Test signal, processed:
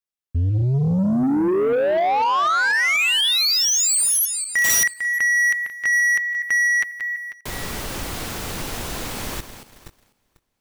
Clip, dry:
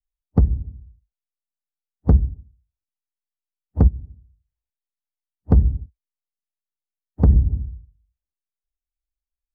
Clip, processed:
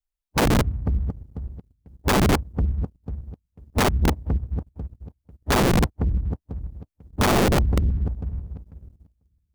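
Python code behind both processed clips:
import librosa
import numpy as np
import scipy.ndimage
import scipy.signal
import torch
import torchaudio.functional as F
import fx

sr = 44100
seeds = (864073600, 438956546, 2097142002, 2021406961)

y = fx.reverse_delay_fb(x, sr, ms=247, feedback_pct=48, wet_db=-11.0)
y = (np.mod(10.0 ** (18.5 / 20.0) * y + 1.0, 2.0) - 1.0) / 10.0 ** (18.5 / 20.0)
y = fx.leveller(y, sr, passes=2)
y = y * librosa.db_to_amplitude(3.5)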